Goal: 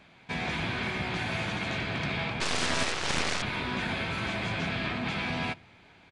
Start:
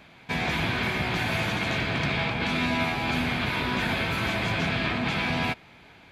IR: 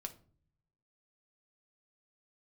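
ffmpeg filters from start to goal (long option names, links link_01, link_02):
-filter_complex "[0:a]asettb=1/sr,asplit=3[link_01][link_02][link_03];[link_01]atrim=end=2.404[link_04];[link_02]atrim=start=2.4:end=3.42,asetpts=PTS-STARTPTS,afade=type=in:duration=0.004:curve=qsin,afade=type=out:start_time=1.016:duration=0.004:curve=qsin,aeval=exprs='0.188*(cos(1*acos(clip(val(0)/0.188,-1,1)))-cos(1*PI/2))+0.0376*(cos(6*acos(clip(val(0)/0.188,-1,1)))-cos(6*PI/2))+0.075*(cos(7*acos(clip(val(0)/0.188,-1,1)))-cos(7*PI/2))':channel_layout=same[link_05];[link_03]atrim=start=3.416[link_06];[link_04][link_05]acrossfade=duration=0.004:curve1=hsin:curve2=qsin[link_07];[link_07][link_06]acrossfade=duration=0.004:curve1=qsin:curve2=hsin,asplit=2[link_08][link_09];[1:a]atrim=start_sample=2205[link_10];[link_09][link_10]afir=irnorm=-1:irlink=0,volume=-9.5dB[link_11];[link_08][link_11]amix=inputs=2:normalize=0,aresample=22050,aresample=44100,volume=-6.5dB"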